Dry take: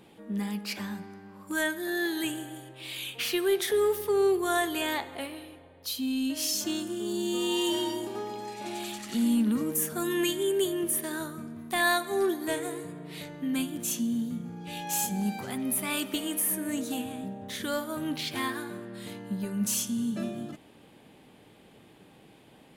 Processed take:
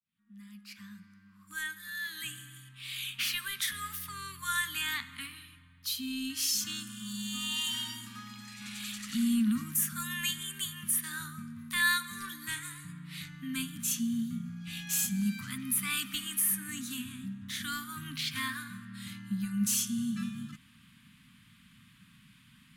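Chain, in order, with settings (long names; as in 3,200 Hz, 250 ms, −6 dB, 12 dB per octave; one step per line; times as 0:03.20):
fade in at the beginning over 3.30 s
inverse Chebyshev band-stop filter 340–790 Hz, stop band 40 dB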